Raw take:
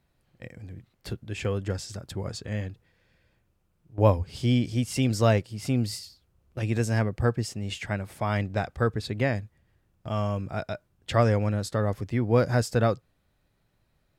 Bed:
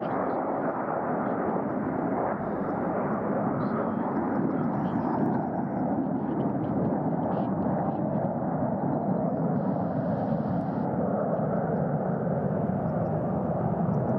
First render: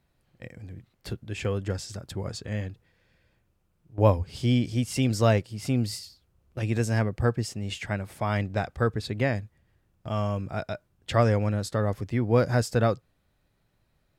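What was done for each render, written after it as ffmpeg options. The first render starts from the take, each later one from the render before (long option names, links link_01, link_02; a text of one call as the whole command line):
ffmpeg -i in.wav -af anull out.wav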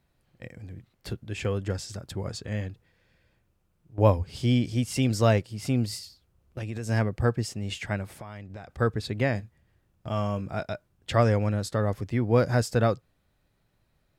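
ffmpeg -i in.wav -filter_complex "[0:a]asettb=1/sr,asplit=3[link_01][link_02][link_03];[link_01]atrim=end=5.854[link_04];[link_02]atrim=start=5.85:end=6.89,asetpts=PTS-STARTPTS,afade=type=in:duration=0.004:curve=qsin,afade=type=out:start_time=1.036:duration=0.004:curve=qsin,acompressor=threshold=-30dB:ratio=6:attack=3.2:release=140:knee=1:detection=peak[link_05];[link_03]atrim=start=6.886[link_06];[link_04][link_05]acrossfade=duration=0.004:curve1=hsin:curve2=qsin[link_07];[link_07][link_06]acrossfade=duration=0.004:curve1=qsin:curve2=hsin,asettb=1/sr,asplit=3[link_08][link_09][link_10];[link_08]atrim=end=8.094[link_11];[link_09]atrim=start=8.09:end=8.79,asetpts=PTS-STARTPTS,afade=type=in:duration=0.004:curve=qsin,afade=type=out:start_time=0.696:duration=0.004:curve=qsin,acompressor=threshold=-37dB:ratio=10:attack=3.2:release=140:knee=1:detection=peak[link_12];[link_10]atrim=start=8.786[link_13];[link_11][link_12]acrossfade=duration=0.004:curve1=hsin:curve2=qsin[link_14];[link_14][link_13]acrossfade=duration=0.004:curve1=qsin:curve2=hsin,asettb=1/sr,asplit=3[link_15][link_16][link_17];[link_15]atrim=end=9.324[link_18];[link_16]atrim=start=9.32:end=10.66,asetpts=PTS-STARTPTS,afade=type=in:duration=0.004:curve=qsin,afade=type=out:start_time=1.336:duration=0.004:curve=qsin,asplit=2[link_19][link_20];[link_20]adelay=25,volume=-14dB[link_21];[link_19][link_21]amix=inputs=2:normalize=0,atrim=end_sample=59094[link_22];[link_17]atrim=start=10.656[link_23];[link_18][link_22]acrossfade=duration=0.004:curve1=hsin:curve2=qsin[link_24];[link_24][link_23]acrossfade=duration=0.004:curve1=qsin:curve2=hsin" out.wav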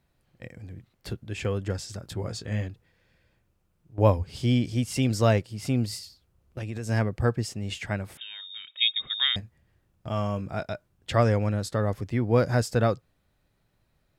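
ffmpeg -i in.wav -filter_complex "[0:a]asettb=1/sr,asplit=3[link_01][link_02][link_03];[link_01]atrim=end=2.024[link_04];[link_02]atrim=start=2.02:end=2.68,asetpts=PTS-STARTPTS,afade=type=in:duration=0.004:curve=qsin,afade=type=out:start_time=0.656:duration=0.004:curve=qsin,asplit=2[link_05][link_06];[link_06]adelay=18,volume=-6.5dB[link_07];[link_05][link_07]amix=inputs=2:normalize=0,atrim=end_sample=29106[link_08];[link_03]atrim=start=2.676[link_09];[link_04][link_08]acrossfade=duration=0.004:curve1=hsin:curve2=qsin[link_10];[link_10][link_09]acrossfade=duration=0.004:curve1=qsin:curve2=hsin,asettb=1/sr,asplit=3[link_11][link_12][link_13];[link_11]atrim=end=8.174[link_14];[link_12]atrim=start=8.17:end=9.36,asetpts=PTS-STARTPTS,afade=type=in:duration=0.004:curve=qsin,afade=type=out:start_time=1.186:duration=0.004:curve=qsin,lowpass=frequency=3200:width_type=q:width=0.5098,lowpass=frequency=3200:width_type=q:width=0.6013,lowpass=frequency=3200:width_type=q:width=0.9,lowpass=frequency=3200:width_type=q:width=2.563,afreqshift=-3800[link_15];[link_13]atrim=start=9.356[link_16];[link_14][link_15]acrossfade=duration=0.004:curve1=hsin:curve2=qsin[link_17];[link_17][link_16]acrossfade=duration=0.004:curve1=qsin:curve2=hsin" out.wav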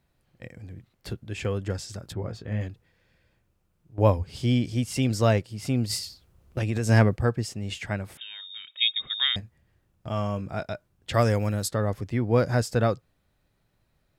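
ffmpeg -i in.wav -filter_complex "[0:a]asettb=1/sr,asplit=3[link_01][link_02][link_03];[link_01]atrim=end=2.124[link_04];[link_02]atrim=start=2.12:end=2.61,asetpts=PTS-STARTPTS,afade=type=in:duration=0.004:curve=qsin,afade=type=out:start_time=0.486:duration=0.004:curve=qsin,equalizer=frequency=8000:width=0.51:gain=-15[link_05];[link_03]atrim=start=2.606[link_06];[link_04][link_05]acrossfade=duration=0.004:curve1=hsin:curve2=qsin[link_07];[link_07][link_06]acrossfade=duration=0.004:curve1=qsin:curve2=hsin,asplit=3[link_08][link_09][link_10];[link_08]afade=type=out:start_time=5.89:duration=0.02[link_11];[link_09]acontrast=81,afade=type=in:start_time=5.89:duration=0.02,afade=type=out:start_time=7.15:duration=0.02[link_12];[link_10]afade=type=in:start_time=7.15:duration=0.02[link_13];[link_11][link_12][link_13]amix=inputs=3:normalize=0,asplit=3[link_14][link_15][link_16];[link_14]afade=type=out:start_time=11.13:duration=0.02[link_17];[link_15]aemphasis=mode=production:type=50fm,afade=type=in:start_time=11.13:duration=0.02,afade=type=out:start_time=11.67:duration=0.02[link_18];[link_16]afade=type=in:start_time=11.67:duration=0.02[link_19];[link_17][link_18][link_19]amix=inputs=3:normalize=0" out.wav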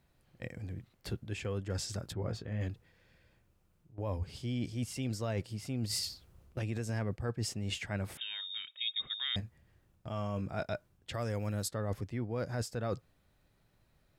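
ffmpeg -i in.wav -af "alimiter=limit=-15dB:level=0:latency=1:release=161,areverse,acompressor=threshold=-32dB:ratio=12,areverse" out.wav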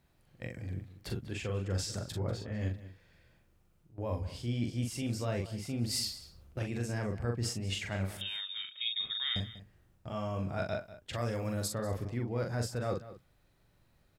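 ffmpeg -i in.wav -filter_complex "[0:a]asplit=2[link_01][link_02];[link_02]adelay=42,volume=-4dB[link_03];[link_01][link_03]amix=inputs=2:normalize=0,asplit=2[link_04][link_05];[link_05]adelay=192.4,volume=-15dB,highshelf=frequency=4000:gain=-4.33[link_06];[link_04][link_06]amix=inputs=2:normalize=0" out.wav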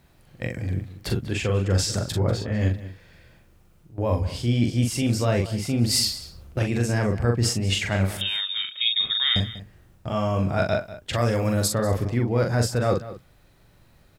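ffmpeg -i in.wav -af "volume=12dB" out.wav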